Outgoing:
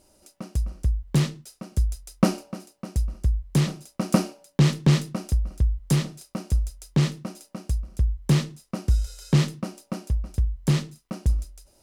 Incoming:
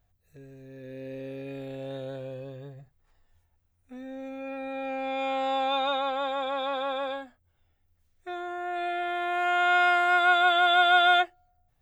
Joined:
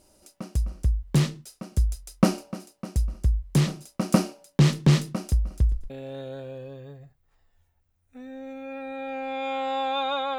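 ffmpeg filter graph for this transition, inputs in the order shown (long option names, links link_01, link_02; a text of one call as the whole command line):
ffmpeg -i cue0.wav -i cue1.wav -filter_complex "[0:a]asettb=1/sr,asplit=3[link_01][link_02][link_03];[link_01]atrim=end=5.494[link_04];[link_02]atrim=start=5.49:end=5.9,asetpts=PTS-STARTPTS,afade=type=in:duration=0.004:curve=qsin,afade=type=out:start_time=0.406:duration=0.004:curve=qsin,asplit=6[link_05][link_06][link_07][link_08][link_09][link_10];[link_06]adelay=116,afreqshift=-43,volume=-14dB[link_11];[link_07]adelay=232,afreqshift=-86,volume=-19.4dB[link_12];[link_08]adelay=348,afreqshift=-129,volume=-24.7dB[link_13];[link_09]adelay=464,afreqshift=-172,volume=-30.1dB[link_14];[link_10]adelay=580,afreqshift=-215,volume=-35.4dB[link_15];[link_05][link_11][link_12][link_13][link_14][link_15]amix=inputs=6:normalize=0,atrim=end_sample=18081[link_16];[link_03]atrim=start=5.896[link_17];[link_04][link_16]acrossfade=duration=0.004:curve1=hsin:curve2=qsin[link_18];[link_18][link_17]acrossfade=duration=0.004:curve1=qsin:curve2=hsin,apad=whole_dur=10.38,atrim=end=10.38,atrim=end=5.902[link_19];[1:a]atrim=start=1.658:end=6.14[link_20];[link_19][link_20]acrossfade=duration=0.004:curve1=hsin:curve2=hsin" out.wav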